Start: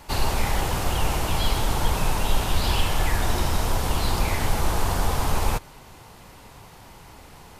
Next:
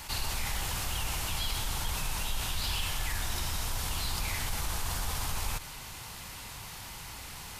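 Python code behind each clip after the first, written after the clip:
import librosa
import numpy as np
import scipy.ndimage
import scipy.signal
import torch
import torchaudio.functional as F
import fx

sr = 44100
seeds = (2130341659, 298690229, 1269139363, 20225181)

y = fx.tone_stack(x, sr, knobs='5-5-5')
y = fx.env_flatten(y, sr, amount_pct=50)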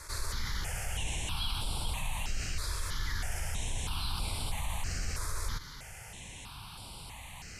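y = scipy.signal.sosfilt(scipy.signal.butter(4, 11000.0, 'lowpass', fs=sr, output='sos'), x)
y = fx.phaser_held(y, sr, hz=3.1, low_hz=790.0, high_hz=6400.0)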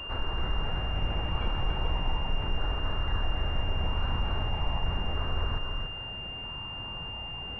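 y = x + 10.0 ** (-4.5 / 20.0) * np.pad(x, (int(287 * sr / 1000.0), 0))[:len(x)]
y = fx.pwm(y, sr, carrier_hz=2800.0)
y = y * librosa.db_to_amplitude(4.5)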